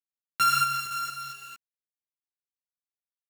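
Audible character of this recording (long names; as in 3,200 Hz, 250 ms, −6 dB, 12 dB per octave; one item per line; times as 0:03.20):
a buzz of ramps at a fixed pitch in blocks of 32 samples
tremolo saw down 1.1 Hz, depth 45%
a quantiser's noise floor 8 bits, dither none
a shimmering, thickened sound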